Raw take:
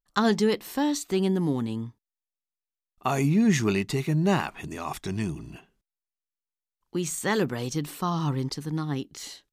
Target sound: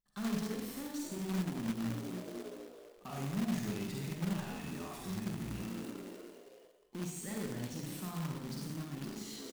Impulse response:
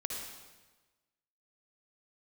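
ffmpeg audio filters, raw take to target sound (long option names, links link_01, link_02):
-filter_complex "[0:a]asplit=2[link_01][link_02];[link_02]acrusher=bits=6:mix=0:aa=0.000001,volume=-5.5dB[link_03];[link_01][link_03]amix=inputs=2:normalize=0,asoftclip=type=tanh:threshold=-22.5dB,asplit=6[link_04][link_05][link_06][link_07][link_08][link_09];[link_05]adelay=259,afreqshift=62,volume=-18dB[link_10];[link_06]adelay=518,afreqshift=124,volume=-22.7dB[link_11];[link_07]adelay=777,afreqshift=186,volume=-27.5dB[link_12];[link_08]adelay=1036,afreqshift=248,volume=-32.2dB[link_13];[link_09]adelay=1295,afreqshift=310,volume=-36.9dB[link_14];[link_04][link_10][link_11][link_12][link_13][link_14]amix=inputs=6:normalize=0,areverse,acompressor=threshold=-39dB:ratio=6,areverse,alimiter=level_in=18.5dB:limit=-24dB:level=0:latency=1:release=16,volume=-18.5dB,equalizer=frequency=200:width_type=o:width=0.72:gain=11,asplit=2[link_15][link_16];[link_16]adelay=49,volume=-11dB[link_17];[link_15][link_17]amix=inputs=2:normalize=0[link_18];[1:a]atrim=start_sample=2205,asetrate=61740,aresample=44100[link_19];[link_18][link_19]afir=irnorm=-1:irlink=0,acrusher=bits=2:mode=log:mix=0:aa=0.000001,volume=4dB"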